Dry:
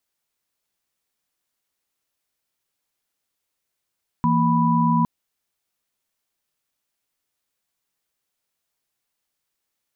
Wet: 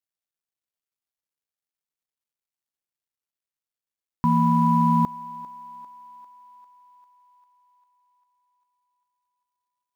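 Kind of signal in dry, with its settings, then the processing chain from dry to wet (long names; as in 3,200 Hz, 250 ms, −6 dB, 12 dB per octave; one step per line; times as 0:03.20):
held notes E3/A#3/B5 sine, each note −20 dBFS 0.81 s
mu-law and A-law mismatch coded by A
feedback echo with a high-pass in the loop 398 ms, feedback 68%, high-pass 500 Hz, level −16.5 dB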